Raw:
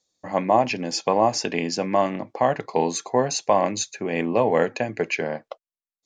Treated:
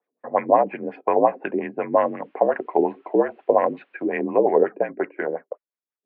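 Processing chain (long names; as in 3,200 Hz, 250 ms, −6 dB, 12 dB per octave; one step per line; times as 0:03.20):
auto-filter low-pass sine 5.6 Hz 380–2,100 Hz
0:01.94–0:04.05: background noise white −58 dBFS
single-sideband voice off tune −52 Hz 300–2,900 Hz
level −1 dB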